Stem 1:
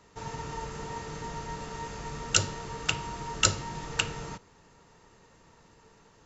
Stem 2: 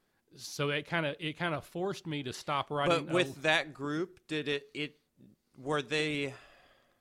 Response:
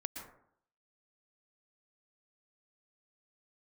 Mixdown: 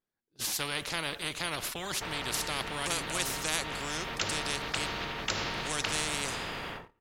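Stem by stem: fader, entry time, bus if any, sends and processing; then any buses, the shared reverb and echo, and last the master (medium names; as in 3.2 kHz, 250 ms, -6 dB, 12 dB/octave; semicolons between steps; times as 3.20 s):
-5.5 dB, 1.85 s, send -22 dB, low-pass 3 kHz 24 dB/octave; decay stretcher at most 25 dB/s
-1.0 dB, 0.00 s, no send, none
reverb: on, RT60 0.65 s, pre-delay 107 ms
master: gate -51 dBFS, range -38 dB; spectrum-flattening compressor 4:1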